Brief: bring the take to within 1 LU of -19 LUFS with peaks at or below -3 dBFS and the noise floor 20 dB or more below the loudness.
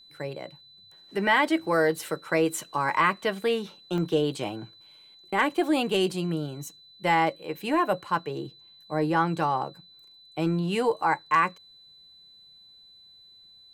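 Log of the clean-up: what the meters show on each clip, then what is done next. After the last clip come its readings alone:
dropouts 1; longest dropout 2.2 ms; steady tone 4 kHz; tone level -51 dBFS; loudness -26.5 LUFS; peak level -9.5 dBFS; loudness target -19.0 LUFS
-> interpolate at 3.98 s, 2.2 ms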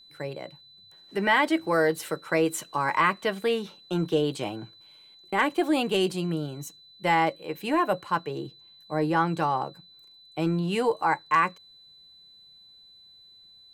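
dropouts 0; steady tone 4 kHz; tone level -51 dBFS
-> band-stop 4 kHz, Q 30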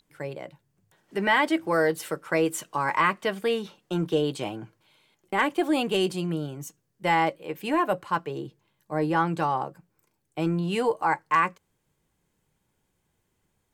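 steady tone not found; loudness -26.5 LUFS; peak level -9.5 dBFS; loudness target -19.0 LUFS
-> trim +7.5 dB; peak limiter -3 dBFS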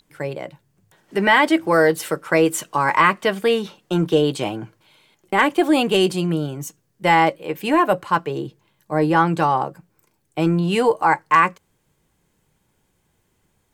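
loudness -19.0 LUFS; peak level -3.0 dBFS; noise floor -67 dBFS

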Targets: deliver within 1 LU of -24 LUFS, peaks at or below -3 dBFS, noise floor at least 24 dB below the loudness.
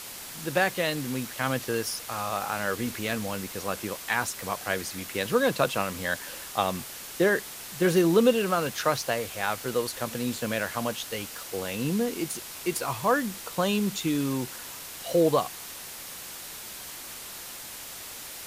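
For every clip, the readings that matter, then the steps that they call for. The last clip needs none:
noise floor -41 dBFS; noise floor target -53 dBFS; loudness -28.5 LUFS; peak level -9.0 dBFS; loudness target -24.0 LUFS
-> noise print and reduce 12 dB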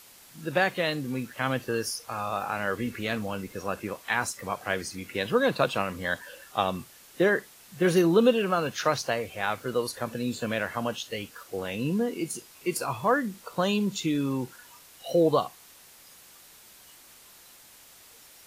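noise floor -53 dBFS; loudness -28.5 LUFS; peak level -9.0 dBFS; loudness target -24.0 LUFS
-> trim +4.5 dB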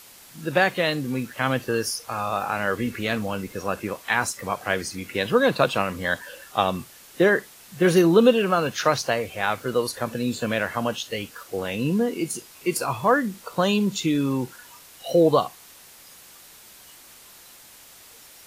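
loudness -24.0 LUFS; peak level -4.5 dBFS; noise floor -48 dBFS

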